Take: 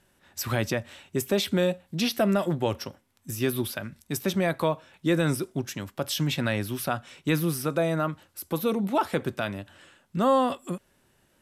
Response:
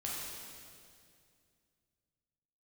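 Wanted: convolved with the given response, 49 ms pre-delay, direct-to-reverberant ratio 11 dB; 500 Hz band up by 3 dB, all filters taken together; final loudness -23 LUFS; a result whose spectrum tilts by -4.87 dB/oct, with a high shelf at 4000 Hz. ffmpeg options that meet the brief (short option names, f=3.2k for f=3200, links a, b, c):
-filter_complex "[0:a]equalizer=f=500:t=o:g=3.5,highshelf=f=4k:g=4,asplit=2[a][b];[1:a]atrim=start_sample=2205,adelay=49[c];[b][c]afir=irnorm=-1:irlink=0,volume=-13dB[d];[a][d]amix=inputs=2:normalize=0,volume=2.5dB"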